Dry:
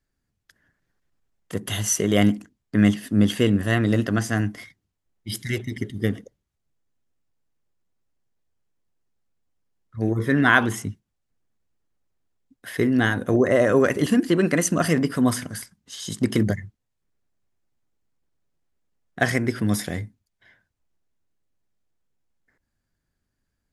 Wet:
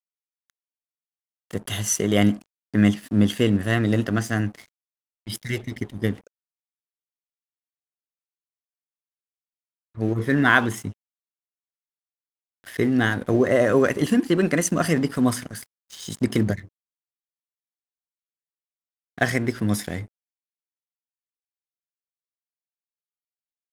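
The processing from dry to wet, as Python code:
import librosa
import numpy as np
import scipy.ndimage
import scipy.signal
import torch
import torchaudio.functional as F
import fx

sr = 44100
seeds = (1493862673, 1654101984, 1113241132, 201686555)

y = np.sign(x) * np.maximum(np.abs(x) - 10.0 ** (-42.0 / 20.0), 0.0)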